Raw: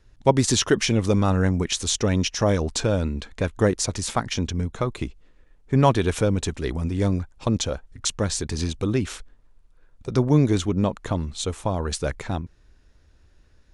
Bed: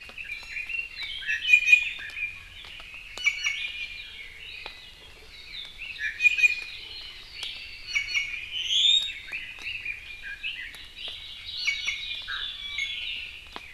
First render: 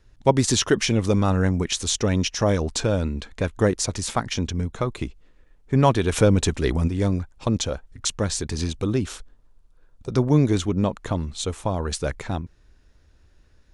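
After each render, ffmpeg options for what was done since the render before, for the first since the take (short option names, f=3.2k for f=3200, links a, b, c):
-filter_complex "[0:a]asettb=1/sr,asplit=3[a][b][c];[a]atrim=end=6.124[d];[b]atrim=start=6.12:end=6.88,asetpts=PTS-STARTPTS,afade=t=in:d=0.004:c=qsin,afade=t=out:st=0.756:d=0.004:c=qsin,acontrast=21[e];[c]atrim=start=6.876[f];[d][e]acrossfade=d=0.004:c1=hsin:c2=qsin[g];[g][f]acrossfade=d=0.004:c1=qsin:c2=hsin,asettb=1/sr,asplit=3[h][i][j];[h]atrim=end=8.944[k];[i]atrim=start=8.94:end=10.11,asetpts=PTS-STARTPTS,afade=t=in:d=0.004:c=qsin,afade=t=out:st=1.166:d=0.004:c=qsin,equalizer=f=2.1k:t=o:w=0.77:g=-5[l];[j]atrim=start=10.106[m];[k][l]acrossfade=d=0.004:c1=hsin:c2=qsin[n];[n][m]acrossfade=d=0.004:c1=qsin:c2=hsin"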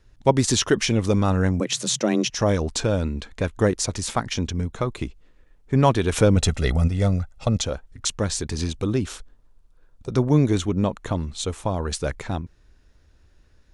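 -filter_complex "[0:a]asettb=1/sr,asplit=3[a][b][c];[a]atrim=end=1.604[d];[b]atrim=start=1.6:end=2.3,asetpts=PTS-STARTPTS,afade=t=in:d=0.004:c=qsin,afade=t=out:st=0.696:d=0.004:c=qsin,afreqshift=110[e];[c]atrim=start=2.296[f];[d][e]acrossfade=d=0.004:c1=hsin:c2=qsin[g];[g][f]acrossfade=d=0.004:c1=qsin:c2=hsin,asettb=1/sr,asplit=3[h][i][j];[h]atrim=end=6.364[k];[i]atrim=start=6.36:end=7.62,asetpts=PTS-STARTPTS,afade=t=in:d=0.004:c=qsin,afade=t=out:st=1.256:d=0.004:c=qsin,aecho=1:1:1.5:0.62,atrim=end_sample=55566[l];[j]atrim=start=7.616[m];[k][l]acrossfade=d=0.004:c1=hsin:c2=qsin[n];[n][m]acrossfade=d=0.004:c1=qsin:c2=hsin,asettb=1/sr,asplit=3[o][p][q];[o]atrim=end=10.094[r];[p]atrim=start=10.09:end=11.11,asetpts=PTS-STARTPTS,afade=t=in:d=0.004:c=qsin,afade=t=out:st=1.016:d=0.004:c=qsin,bandreject=f=4.9k:w=9.8[s];[q]atrim=start=11.106[t];[r][s]acrossfade=d=0.004:c1=hsin:c2=qsin[u];[u][t]acrossfade=d=0.004:c1=qsin:c2=hsin"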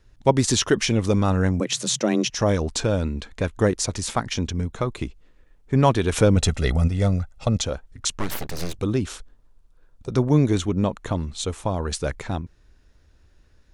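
-filter_complex "[0:a]asettb=1/sr,asplit=3[a][b][c];[a]atrim=end=8.194[d];[b]atrim=start=8.19:end=8.79,asetpts=PTS-STARTPTS,afade=t=in:d=0.004:c=qsin,afade=t=out:st=0.596:d=0.004:c=qsin,aeval=exprs='abs(val(0))':c=same[e];[c]atrim=start=8.786[f];[d][e]acrossfade=d=0.004:c1=hsin:c2=qsin[g];[g][f]acrossfade=d=0.004:c1=qsin:c2=hsin"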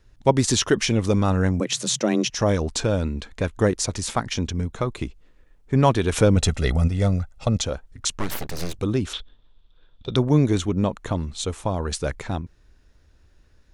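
-filter_complex "[0:a]asettb=1/sr,asplit=3[a][b][c];[a]atrim=end=9.134[d];[b]atrim=start=9.13:end=10.16,asetpts=PTS-STARTPTS,afade=t=in:d=0.004:c=qsin,afade=t=out:st=1.026:d=0.004:c=qsin,lowpass=f=3.5k:t=q:w=10[e];[c]atrim=start=10.156[f];[d][e]acrossfade=d=0.004:c1=hsin:c2=qsin[g];[g][f]acrossfade=d=0.004:c1=qsin:c2=hsin"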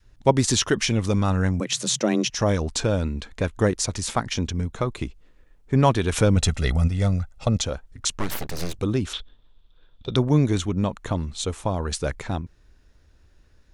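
-af "adynamicequalizer=threshold=0.0224:dfrequency=420:dqfactor=0.82:tfrequency=420:tqfactor=0.82:attack=5:release=100:ratio=0.375:range=2.5:mode=cutabove:tftype=bell"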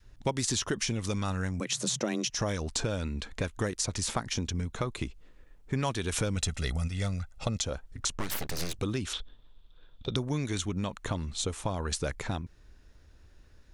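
-filter_complex "[0:a]acrossover=split=1400|4700[a][b][c];[a]acompressor=threshold=-30dB:ratio=4[d];[b]acompressor=threshold=-39dB:ratio=4[e];[c]acompressor=threshold=-32dB:ratio=4[f];[d][e][f]amix=inputs=3:normalize=0"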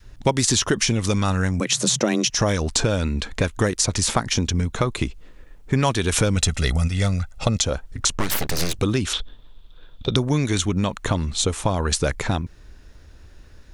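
-af "volume=10.5dB"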